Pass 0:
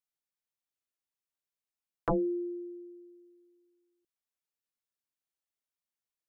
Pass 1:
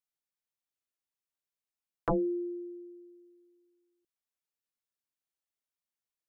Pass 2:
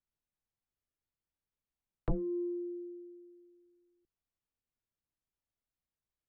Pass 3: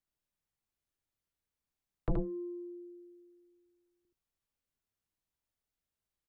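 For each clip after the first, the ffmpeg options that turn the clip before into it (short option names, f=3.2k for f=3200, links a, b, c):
-af anull
-filter_complex "[0:a]aeval=exprs='0.0794*(cos(1*acos(clip(val(0)/0.0794,-1,1)))-cos(1*PI/2))+0.00251*(cos(5*acos(clip(val(0)/0.0794,-1,1)))-cos(5*PI/2))':c=same,aemphasis=mode=reproduction:type=riaa,acrossover=split=330|660[a][b][c];[a]acompressor=threshold=-27dB:ratio=4[d];[b]acompressor=threshold=-41dB:ratio=4[e];[c]acompressor=threshold=-52dB:ratio=4[f];[d][e][f]amix=inputs=3:normalize=0,volume=-2.5dB"
-af "aecho=1:1:76:0.668"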